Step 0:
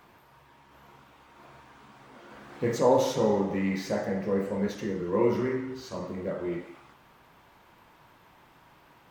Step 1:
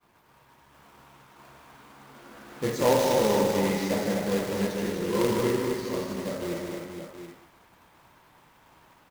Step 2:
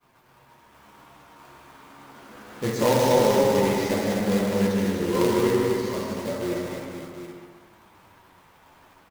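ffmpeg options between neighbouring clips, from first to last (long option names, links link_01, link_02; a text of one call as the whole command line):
ffmpeg -i in.wav -af "acrusher=bits=2:mode=log:mix=0:aa=0.000001,aecho=1:1:154|254|462|727:0.562|0.562|0.398|0.316,agate=range=-33dB:threshold=-51dB:ratio=3:detection=peak,volume=-1.5dB" out.wav
ffmpeg -i in.wav -filter_complex "[0:a]flanger=delay=7.3:depth=4.3:regen=47:speed=0.29:shape=triangular,asplit=2[link_01][link_02];[link_02]adelay=132,lowpass=frequency=2000:poles=1,volume=-4.5dB,asplit=2[link_03][link_04];[link_04]adelay=132,lowpass=frequency=2000:poles=1,volume=0.49,asplit=2[link_05][link_06];[link_06]adelay=132,lowpass=frequency=2000:poles=1,volume=0.49,asplit=2[link_07][link_08];[link_08]adelay=132,lowpass=frequency=2000:poles=1,volume=0.49,asplit=2[link_09][link_10];[link_10]adelay=132,lowpass=frequency=2000:poles=1,volume=0.49,asplit=2[link_11][link_12];[link_12]adelay=132,lowpass=frequency=2000:poles=1,volume=0.49[link_13];[link_03][link_05][link_07][link_09][link_11][link_13]amix=inputs=6:normalize=0[link_14];[link_01][link_14]amix=inputs=2:normalize=0,volume=6dB" out.wav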